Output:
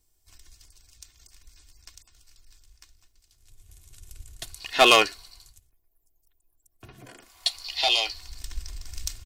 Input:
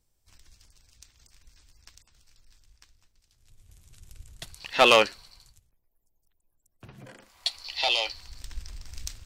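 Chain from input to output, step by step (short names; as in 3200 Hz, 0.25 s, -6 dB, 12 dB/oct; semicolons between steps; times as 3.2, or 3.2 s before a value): high shelf 5900 Hz +7.5 dB; comb 2.8 ms, depth 54%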